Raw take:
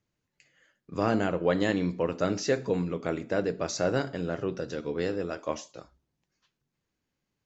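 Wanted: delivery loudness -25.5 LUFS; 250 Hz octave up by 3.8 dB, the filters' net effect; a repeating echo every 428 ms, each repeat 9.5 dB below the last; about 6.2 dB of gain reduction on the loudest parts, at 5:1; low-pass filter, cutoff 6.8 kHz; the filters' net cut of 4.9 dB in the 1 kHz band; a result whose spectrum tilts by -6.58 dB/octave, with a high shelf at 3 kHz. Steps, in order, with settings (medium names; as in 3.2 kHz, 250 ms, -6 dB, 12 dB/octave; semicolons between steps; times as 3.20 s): low-pass 6.8 kHz; peaking EQ 250 Hz +5.5 dB; peaking EQ 1 kHz -6.5 dB; treble shelf 3 kHz -9 dB; compression 5:1, threshold -26 dBFS; feedback delay 428 ms, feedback 33%, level -9.5 dB; trim +7 dB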